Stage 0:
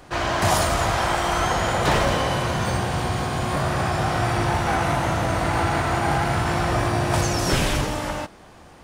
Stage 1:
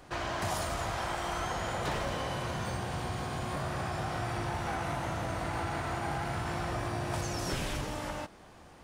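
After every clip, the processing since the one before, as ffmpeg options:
ffmpeg -i in.wav -af "acompressor=threshold=-28dB:ratio=2,volume=-7dB" out.wav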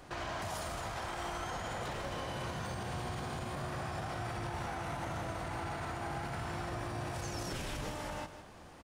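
ffmpeg -i in.wav -filter_complex "[0:a]alimiter=level_in=7dB:limit=-24dB:level=0:latency=1,volume=-7dB,asplit=2[link_01][link_02];[link_02]aecho=0:1:158:0.282[link_03];[link_01][link_03]amix=inputs=2:normalize=0" out.wav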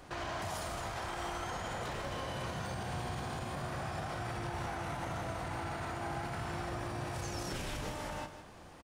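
ffmpeg -i in.wav -filter_complex "[0:a]asplit=2[link_01][link_02];[link_02]adelay=32,volume=-13dB[link_03];[link_01][link_03]amix=inputs=2:normalize=0" out.wav

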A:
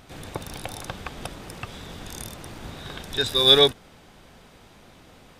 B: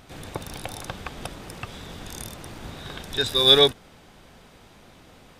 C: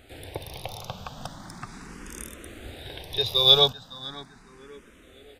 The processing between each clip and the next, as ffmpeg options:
ffmpeg -i in.wav -af anull out.wav
ffmpeg -i in.wav -filter_complex "[0:a]asplit=2[link_01][link_02];[link_02]adelay=558,lowpass=frequency=4000:poles=1,volume=-15dB,asplit=2[link_03][link_04];[link_04]adelay=558,lowpass=frequency=4000:poles=1,volume=0.36,asplit=2[link_05][link_06];[link_06]adelay=558,lowpass=frequency=4000:poles=1,volume=0.36[link_07];[link_01][link_03][link_05][link_07]amix=inputs=4:normalize=0,asplit=2[link_08][link_09];[link_09]afreqshift=0.38[link_10];[link_08][link_10]amix=inputs=2:normalize=1" out.wav

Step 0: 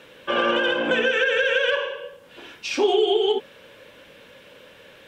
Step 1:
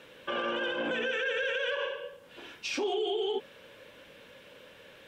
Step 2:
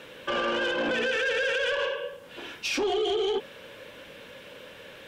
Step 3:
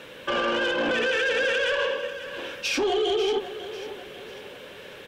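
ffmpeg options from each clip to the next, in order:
ffmpeg -i in.wav -af "alimiter=limit=-18.5dB:level=0:latency=1:release=48,volume=-5dB" out.wav
ffmpeg -i in.wav -af "asoftclip=type=tanh:threshold=-28.5dB,volume=7dB" out.wav
ffmpeg -i in.wav -af "aecho=1:1:544|1088|1632|2176:0.224|0.0985|0.0433|0.0191,volume=2.5dB" out.wav

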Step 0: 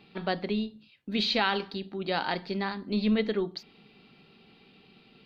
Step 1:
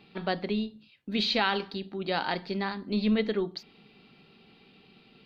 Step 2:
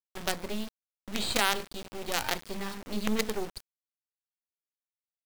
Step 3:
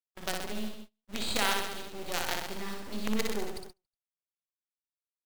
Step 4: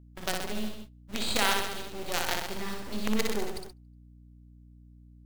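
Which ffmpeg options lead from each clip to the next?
ffmpeg -i in.wav -af anull out.wav
ffmpeg -i in.wav -af "acrusher=bits=4:dc=4:mix=0:aa=0.000001" out.wav
ffmpeg -i in.wav -af "aecho=1:1:60|126|198.6|278.5|366.3:0.631|0.398|0.251|0.158|0.1,agate=range=-30dB:threshold=-39dB:ratio=16:detection=peak,volume=-4dB" out.wav
ffmpeg -i in.wav -af "aeval=exprs='val(0)+0.002*(sin(2*PI*60*n/s)+sin(2*PI*2*60*n/s)/2+sin(2*PI*3*60*n/s)/3+sin(2*PI*4*60*n/s)/4+sin(2*PI*5*60*n/s)/5)':channel_layout=same,volume=2.5dB" out.wav

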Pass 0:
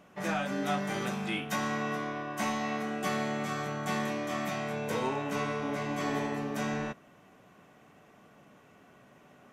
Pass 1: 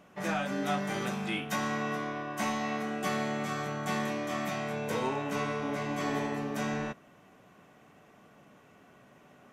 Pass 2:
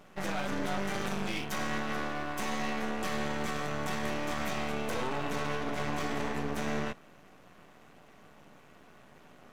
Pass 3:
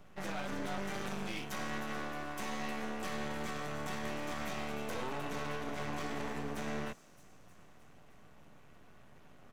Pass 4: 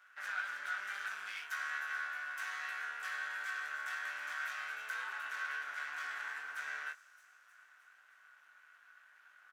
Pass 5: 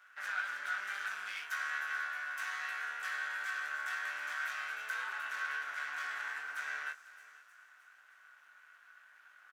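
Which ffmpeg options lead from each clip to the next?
ffmpeg -i in.wav -af anull out.wav
ffmpeg -i in.wav -af "alimiter=level_in=2.5dB:limit=-24dB:level=0:latency=1:release=25,volume=-2.5dB,aeval=exprs='max(val(0),0)':channel_layout=same,volume=5.5dB" out.wav
ffmpeg -i in.wav -filter_complex "[0:a]acrossover=split=130|460|5200[link_01][link_02][link_03][link_04];[link_01]acompressor=mode=upward:threshold=-43dB:ratio=2.5[link_05];[link_04]aecho=1:1:310|620|930|1240|1550|1860|2170|2480:0.398|0.239|0.143|0.086|0.0516|0.031|0.0186|0.0111[link_06];[link_05][link_02][link_03][link_06]amix=inputs=4:normalize=0,volume=-5.5dB" out.wav
ffmpeg -i in.wav -filter_complex "[0:a]highpass=frequency=1500:width_type=q:width=7.5,asplit=2[link_01][link_02];[link_02]adelay=20,volume=-7.5dB[link_03];[link_01][link_03]amix=inputs=2:normalize=0,volume=-6dB" out.wav
ffmpeg -i in.wav -af "aecho=1:1:495:0.126,volume=2dB" out.wav

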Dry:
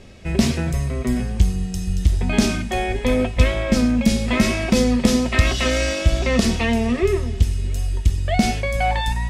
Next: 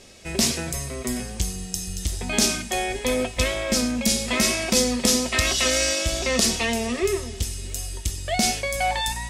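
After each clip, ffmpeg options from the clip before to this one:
ffmpeg -i in.wav -af "bass=frequency=250:gain=-9,treble=frequency=4000:gain=12,volume=-2.5dB" out.wav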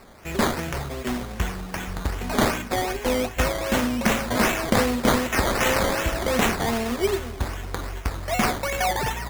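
ffmpeg -i in.wav -af "acrusher=samples=13:mix=1:aa=0.000001:lfo=1:lforange=7.8:lforate=2.6" out.wav

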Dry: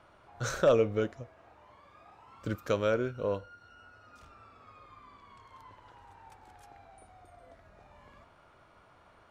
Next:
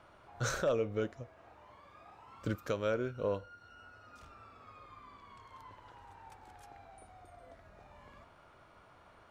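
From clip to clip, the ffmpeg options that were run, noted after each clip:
ffmpeg -i in.wav -af "alimiter=limit=-23.5dB:level=0:latency=1:release=485" out.wav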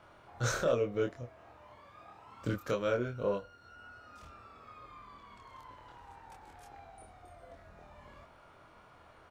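ffmpeg -i in.wav -filter_complex "[0:a]asplit=2[link_01][link_02];[link_02]adelay=25,volume=-2.5dB[link_03];[link_01][link_03]amix=inputs=2:normalize=0" out.wav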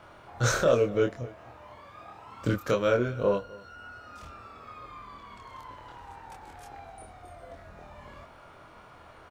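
ffmpeg -i in.wav -af "aecho=1:1:254:0.0841,volume=7dB" out.wav

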